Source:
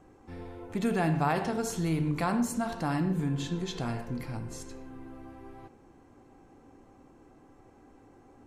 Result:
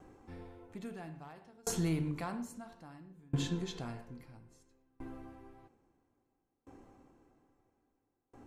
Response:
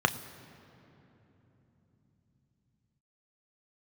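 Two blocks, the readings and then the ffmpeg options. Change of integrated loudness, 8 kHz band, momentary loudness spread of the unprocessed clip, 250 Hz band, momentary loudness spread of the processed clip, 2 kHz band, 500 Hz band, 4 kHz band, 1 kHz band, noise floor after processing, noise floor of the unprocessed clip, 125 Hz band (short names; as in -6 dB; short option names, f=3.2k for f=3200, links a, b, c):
-9.0 dB, -3.5 dB, 19 LU, -9.5 dB, 22 LU, -12.5 dB, -11.0 dB, -5.0 dB, -15.0 dB, -83 dBFS, -58 dBFS, -7.5 dB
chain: -af "volume=20dB,asoftclip=hard,volume=-20dB,aeval=exprs='val(0)*pow(10,-32*if(lt(mod(0.6*n/s,1),2*abs(0.6)/1000),1-mod(0.6*n/s,1)/(2*abs(0.6)/1000),(mod(0.6*n/s,1)-2*abs(0.6)/1000)/(1-2*abs(0.6)/1000))/20)':c=same,volume=1dB"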